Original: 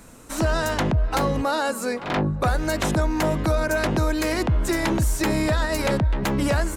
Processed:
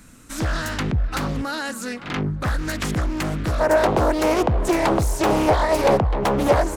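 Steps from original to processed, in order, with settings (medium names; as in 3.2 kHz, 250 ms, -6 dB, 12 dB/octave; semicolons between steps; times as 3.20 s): high-order bell 620 Hz -8.5 dB, from 3.59 s +8.5 dB; loudspeaker Doppler distortion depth 0.65 ms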